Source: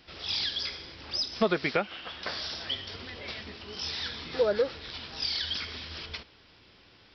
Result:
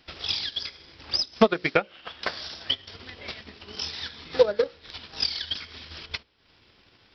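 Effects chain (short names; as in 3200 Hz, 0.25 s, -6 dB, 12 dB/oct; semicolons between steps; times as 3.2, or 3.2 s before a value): notches 60/120/180/240/300/360/420/480/540/600 Hz; transient shaper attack +11 dB, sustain -9 dB; Doppler distortion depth 0.11 ms; gain -1.5 dB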